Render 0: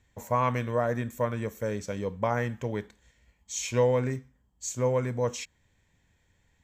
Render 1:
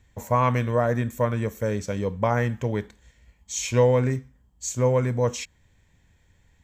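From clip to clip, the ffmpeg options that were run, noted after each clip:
ffmpeg -i in.wav -af "lowshelf=frequency=130:gain=6,volume=4dB" out.wav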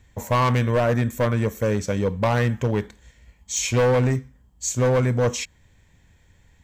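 ffmpeg -i in.wav -af "asoftclip=type=hard:threshold=-20dB,volume=4.5dB" out.wav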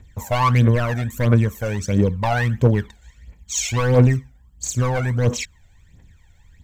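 ffmpeg -i in.wav -af "aphaser=in_gain=1:out_gain=1:delay=1.5:decay=0.72:speed=1.5:type=triangular,volume=-2dB" out.wav

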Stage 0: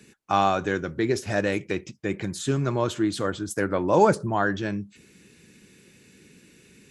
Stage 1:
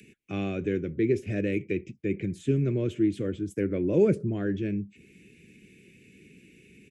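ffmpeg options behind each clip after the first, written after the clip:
ffmpeg -i in.wav -filter_complex "[0:a]firequalizer=gain_entry='entry(410,0);entry(870,-29);entry(2300,-2);entry(4200,-20);entry(7500,-16)':delay=0.05:min_phase=1,acrossover=split=110|1800[link_01][link_02][link_03];[link_03]acompressor=mode=upward:threshold=-53dB:ratio=2.5[link_04];[link_01][link_02][link_04]amix=inputs=3:normalize=0" out.wav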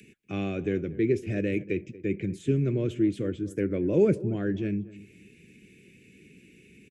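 ffmpeg -i in.wav -filter_complex "[0:a]asplit=2[link_01][link_02];[link_02]adelay=234,lowpass=frequency=1300:poles=1,volume=-17.5dB,asplit=2[link_03][link_04];[link_04]adelay=234,lowpass=frequency=1300:poles=1,volume=0.21[link_05];[link_01][link_03][link_05]amix=inputs=3:normalize=0" out.wav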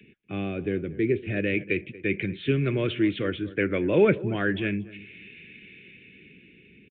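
ffmpeg -i in.wav -filter_complex "[0:a]acrossover=split=810[link_01][link_02];[link_02]dynaudnorm=framelen=360:gausssize=9:maxgain=14.5dB[link_03];[link_01][link_03]amix=inputs=2:normalize=0,aresample=8000,aresample=44100" out.wav

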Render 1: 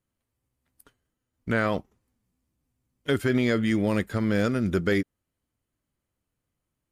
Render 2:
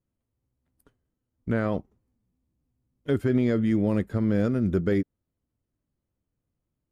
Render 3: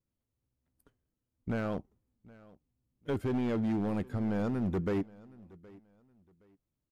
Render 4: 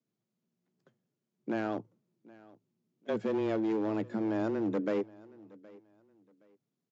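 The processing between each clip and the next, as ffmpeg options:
ffmpeg -i in.wav -af "tiltshelf=frequency=970:gain=7,volume=-5dB" out.wav
ffmpeg -i in.wav -af "volume=22dB,asoftclip=hard,volume=-22dB,aecho=1:1:769|1538:0.075|0.0202,volume=-5dB" out.wav
ffmpeg -i in.wav -af "afreqshift=110,aresample=16000,aresample=44100" out.wav

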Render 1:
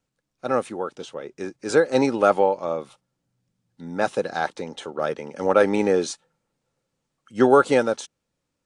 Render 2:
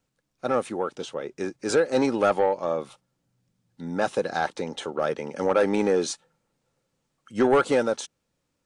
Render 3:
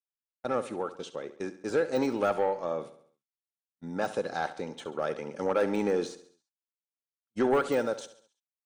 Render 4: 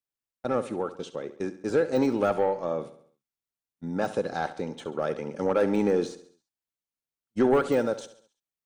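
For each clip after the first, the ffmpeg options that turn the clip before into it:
ffmpeg -i in.wav -filter_complex "[0:a]asplit=2[link_01][link_02];[link_02]acompressor=threshold=-25dB:ratio=6,volume=-2dB[link_03];[link_01][link_03]amix=inputs=2:normalize=0,asoftclip=type=tanh:threshold=-9.5dB,volume=-3dB" out.wav
ffmpeg -i in.wav -af "deesser=0.8,agate=range=-44dB:threshold=-36dB:ratio=16:detection=peak,aecho=1:1:68|136|204|272|340:0.2|0.0958|0.046|0.0221|0.0106,volume=-5.5dB" out.wav
ffmpeg -i in.wav -af "lowshelf=frequency=420:gain=7" out.wav

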